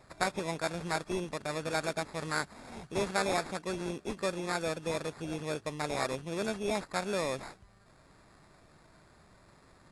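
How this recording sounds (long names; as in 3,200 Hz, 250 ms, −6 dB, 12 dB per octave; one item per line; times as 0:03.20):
aliases and images of a low sample rate 3,000 Hz, jitter 0%
AAC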